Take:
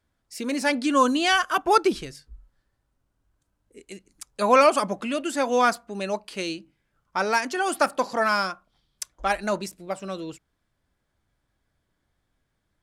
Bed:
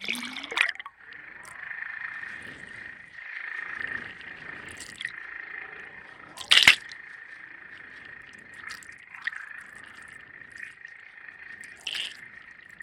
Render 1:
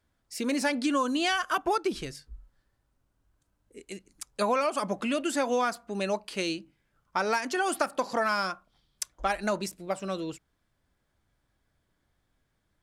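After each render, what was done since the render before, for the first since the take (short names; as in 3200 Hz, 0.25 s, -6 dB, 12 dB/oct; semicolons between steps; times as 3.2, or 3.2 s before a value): compressor 10:1, threshold -23 dBFS, peak gain reduction 11.5 dB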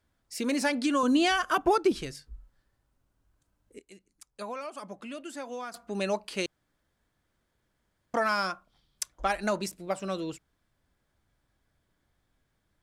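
1.03–1.92 low shelf 470 Hz +8 dB; 3.79–5.74 gain -11.5 dB; 6.46–8.14 room tone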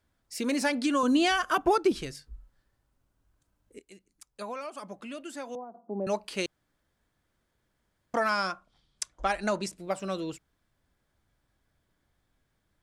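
5.55–6.07 Chebyshev band-pass 200–860 Hz, order 3; 8.3–9.78 LPF 10000 Hz 24 dB/oct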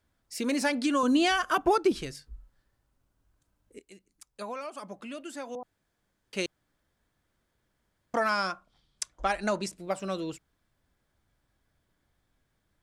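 5.63–6.33 room tone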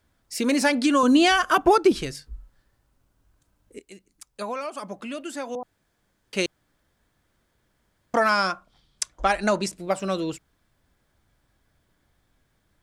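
gain +6.5 dB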